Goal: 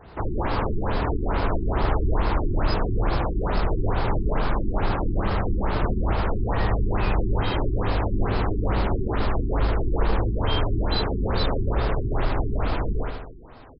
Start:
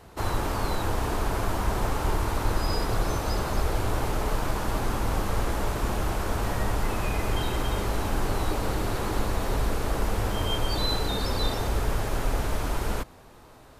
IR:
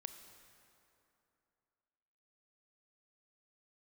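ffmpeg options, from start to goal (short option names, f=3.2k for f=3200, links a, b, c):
-filter_complex "[0:a]volume=21.5dB,asoftclip=hard,volume=-21.5dB,asplit=2[a][b];[b]aecho=0:1:76|152|228|304|380|456|532|608:0.631|0.366|0.212|0.123|0.0714|0.0414|0.024|0.0139[c];[a][c]amix=inputs=2:normalize=0,afftfilt=real='re*lt(b*sr/1024,390*pow(5400/390,0.5+0.5*sin(2*PI*2.3*pts/sr)))':imag='im*lt(b*sr/1024,390*pow(5400/390,0.5+0.5*sin(2*PI*2.3*pts/sr)))':win_size=1024:overlap=0.75,volume=3dB"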